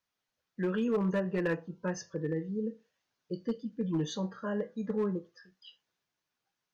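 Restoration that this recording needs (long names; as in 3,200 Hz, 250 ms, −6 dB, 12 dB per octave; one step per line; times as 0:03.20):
clipped peaks rebuilt −24 dBFS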